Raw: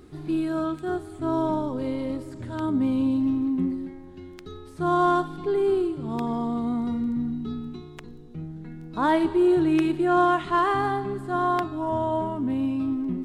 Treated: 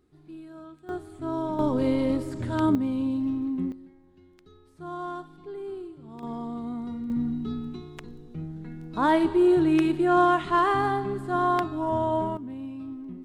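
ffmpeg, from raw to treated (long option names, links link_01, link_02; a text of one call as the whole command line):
ffmpeg -i in.wav -af "asetnsamples=nb_out_samples=441:pad=0,asendcmd='0.89 volume volume -5dB;1.59 volume volume 4.5dB;2.75 volume volume -4dB;3.72 volume volume -14dB;6.23 volume volume -7dB;7.1 volume volume 0dB;12.37 volume volume -11dB',volume=-17.5dB" out.wav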